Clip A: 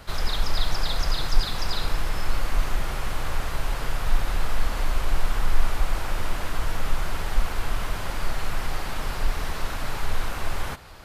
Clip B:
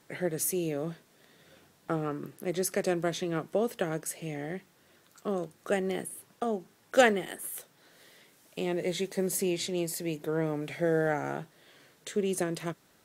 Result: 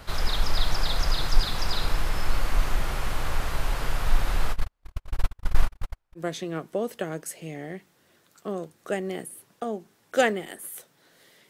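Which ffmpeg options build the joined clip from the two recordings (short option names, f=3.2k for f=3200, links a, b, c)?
-filter_complex "[0:a]asplit=3[a][b][c];[a]afade=t=out:st=4.52:d=0.02[d];[b]agate=range=-52dB:threshold=-15dB:ratio=16:release=100:detection=peak,afade=t=in:st=4.52:d=0.02,afade=t=out:st=6.23:d=0.02[e];[c]afade=t=in:st=6.23:d=0.02[f];[d][e][f]amix=inputs=3:normalize=0,apad=whole_dur=11.49,atrim=end=11.49,atrim=end=6.23,asetpts=PTS-STARTPTS[g];[1:a]atrim=start=2.95:end=8.29,asetpts=PTS-STARTPTS[h];[g][h]acrossfade=d=0.08:c1=tri:c2=tri"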